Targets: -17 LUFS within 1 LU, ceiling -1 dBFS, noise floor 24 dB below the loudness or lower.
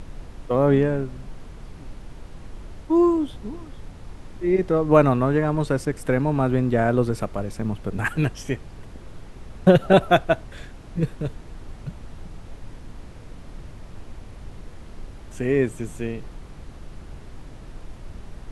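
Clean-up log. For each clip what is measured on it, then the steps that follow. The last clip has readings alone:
noise floor -42 dBFS; noise floor target -46 dBFS; loudness -22.0 LUFS; peak -2.0 dBFS; loudness target -17.0 LUFS
-> noise print and reduce 6 dB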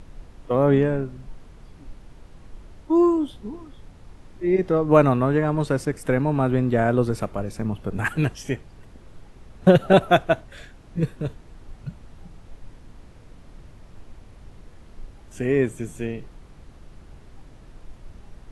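noise floor -48 dBFS; loudness -22.0 LUFS; peak -2.0 dBFS; loudness target -17.0 LUFS
-> gain +5 dB; limiter -1 dBFS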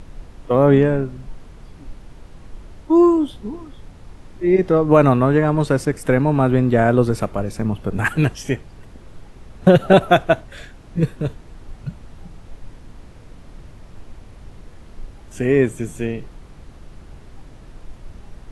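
loudness -17.5 LUFS; peak -1.0 dBFS; noise floor -43 dBFS

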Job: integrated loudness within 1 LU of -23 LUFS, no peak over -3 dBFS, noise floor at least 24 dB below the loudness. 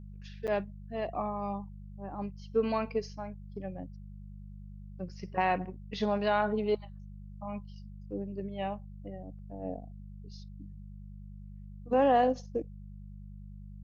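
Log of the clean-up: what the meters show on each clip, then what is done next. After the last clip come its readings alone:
dropouts 1; longest dropout 7.7 ms; hum 50 Hz; harmonics up to 200 Hz; hum level -43 dBFS; loudness -33.5 LUFS; peak -14.5 dBFS; loudness target -23.0 LUFS
-> interpolate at 0.47, 7.7 ms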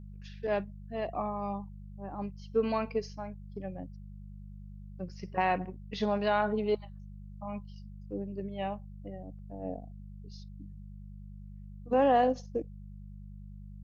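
dropouts 0; hum 50 Hz; harmonics up to 200 Hz; hum level -43 dBFS
-> de-hum 50 Hz, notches 4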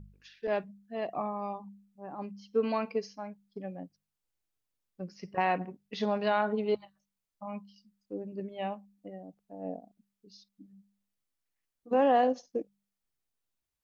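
hum none; loudness -33.0 LUFS; peak -15.0 dBFS; loudness target -23.0 LUFS
-> gain +10 dB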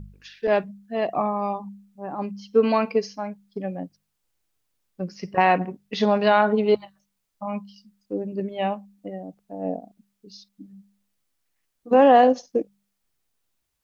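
loudness -23.0 LUFS; peak -5.0 dBFS; noise floor -77 dBFS

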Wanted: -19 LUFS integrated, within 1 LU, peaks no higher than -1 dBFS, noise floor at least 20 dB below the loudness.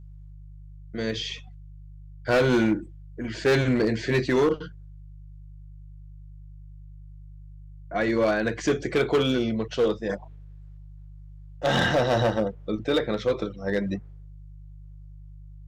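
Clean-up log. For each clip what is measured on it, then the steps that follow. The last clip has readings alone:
clipped 1.1%; flat tops at -16.0 dBFS; hum 50 Hz; harmonics up to 150 Hz; hum level -42 dBFS; loudness -25.0 LUFS; peak -16.0 dBFS; loudness target -19.0 LUFS
-> clip repair -16 dBFS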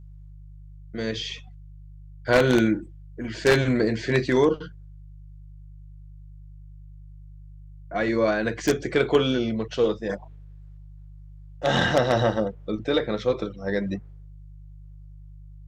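clipped 0.0%; hum 50 Hz; harmonics up to 150 Hz; hum level -42 dBFS
-> de-hum 50 Hz, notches 3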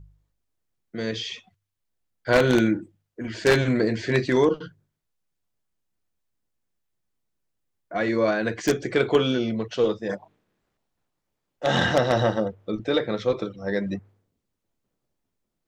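hum none; loudness -24.0 LUFS; peak -7.0 dBFS; loudness target -19.0 LUFS
-> gain +5 dB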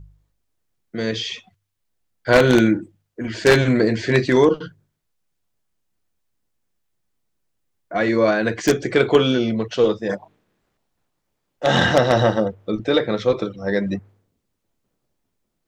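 loudness -19.0 LUFS; peak -2.0 dBFS; noise floor -75 dBFS

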